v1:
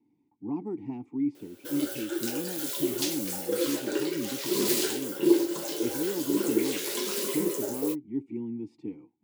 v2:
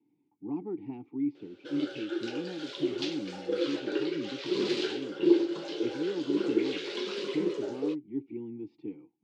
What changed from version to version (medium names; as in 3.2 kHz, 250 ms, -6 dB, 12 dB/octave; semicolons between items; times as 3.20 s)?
master: add cabinet simulation 140–4100 Hz, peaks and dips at 230 Hz -7 dB, 630 Hz -5 dB, 1 kHz -6 dB, 1.9 kHz -4 dB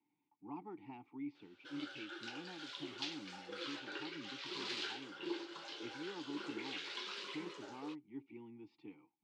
background -6.0 dB; master: add resonant low shelf 670 Hz -12 dB, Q 1.5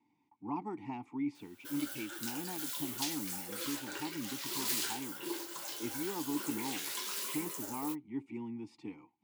speech +6.5 dB; master: remove cabinet simulation 140–4100 Hz, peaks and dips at 230 Hz -7 dB, 630 Hz -5 dB, 1 kHz -6 dB, 1.9 kHz -4 dB